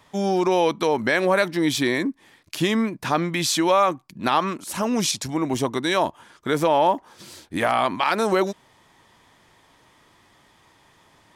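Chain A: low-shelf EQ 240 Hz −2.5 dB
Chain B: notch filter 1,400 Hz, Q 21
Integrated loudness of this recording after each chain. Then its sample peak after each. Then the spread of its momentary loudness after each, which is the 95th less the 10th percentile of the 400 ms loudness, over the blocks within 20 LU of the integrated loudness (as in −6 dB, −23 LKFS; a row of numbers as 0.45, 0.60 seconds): −22.5, −22.5 LKFS; −8.0, −8.0 dBFS; 9, 9 LU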